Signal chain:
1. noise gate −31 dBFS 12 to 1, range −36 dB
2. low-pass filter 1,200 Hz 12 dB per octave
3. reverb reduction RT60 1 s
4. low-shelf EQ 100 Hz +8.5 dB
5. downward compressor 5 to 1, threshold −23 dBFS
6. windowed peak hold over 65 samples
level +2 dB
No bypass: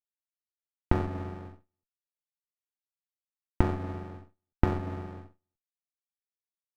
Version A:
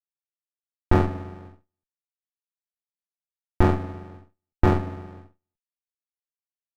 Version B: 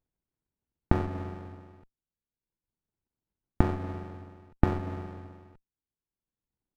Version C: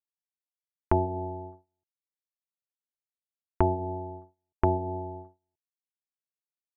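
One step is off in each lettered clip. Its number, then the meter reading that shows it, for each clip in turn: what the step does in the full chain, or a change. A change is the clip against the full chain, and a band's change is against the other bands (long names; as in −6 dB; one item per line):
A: 5, average gain reduction 3.0 dB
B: 1, change in momentary loudness spread +2 LU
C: 6, 2 kHz band −8.0 dB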